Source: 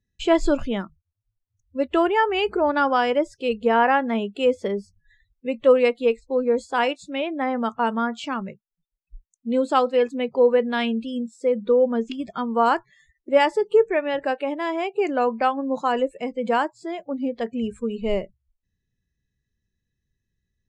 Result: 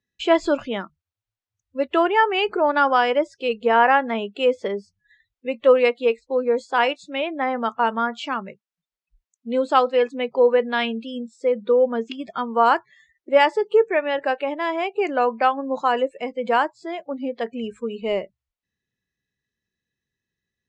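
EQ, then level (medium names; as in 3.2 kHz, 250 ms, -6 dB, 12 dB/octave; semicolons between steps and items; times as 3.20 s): high-pass 550 Hz 6 dB/octave; distance through air 88 m; +4.5 dB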